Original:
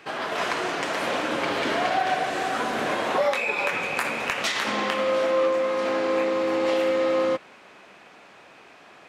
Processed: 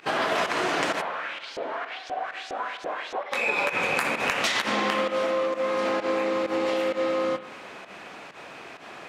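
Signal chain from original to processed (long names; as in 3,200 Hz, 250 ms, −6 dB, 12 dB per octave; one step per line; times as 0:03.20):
downward compressor, threshold −29 dBFS, peak gain reduction 10.5 dB
0:01.00–0:03.31: auto-filter band-pass saw up 1.2 Hz → 4.2 Hz 450–6,300 Hz
fake sidechain pumping 130 BPM, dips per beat 1, −18 dB, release 103 ms
convolution reverb RT60 1.3 s, pre-delay 48 ms, DRR 11 dB
level +7 dB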